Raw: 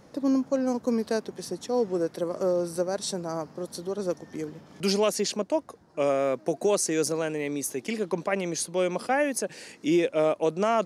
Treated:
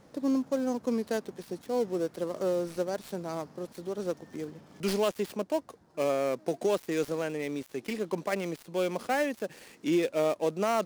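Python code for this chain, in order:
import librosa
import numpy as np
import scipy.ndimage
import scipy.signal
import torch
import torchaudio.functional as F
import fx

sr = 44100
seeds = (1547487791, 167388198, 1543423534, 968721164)

y = fx.dead_time(x, sr, dead_ms=0.09)
y = y * 10.0 ** (-3.5 / 20.0)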